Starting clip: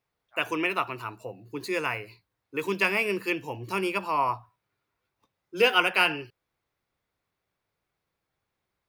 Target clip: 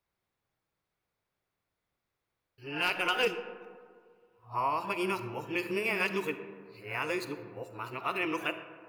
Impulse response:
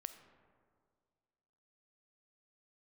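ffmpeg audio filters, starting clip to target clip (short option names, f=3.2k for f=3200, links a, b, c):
-filter_complex "[0:a]areverse,asplit=2[a][b];[b]alimiter=limit=-17.5dB:level=0:latency=1:release=118,volume=3dB[c];[a][c]amix=inputs=2:normalize=0,aeval=exprs='0.422*(abs(mod(val(0)/0.422+3,4)-2)-1)':c=same[d];[1:a]atrim=start_sample=2205[e];[d][e]afir=irnorm=-1:irlink=0,volume=-7dB"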